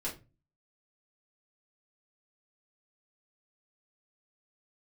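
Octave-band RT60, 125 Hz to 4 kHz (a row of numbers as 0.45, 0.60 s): 0.50, 0.45, 0.30, 0.25, 0.25, 0.20 s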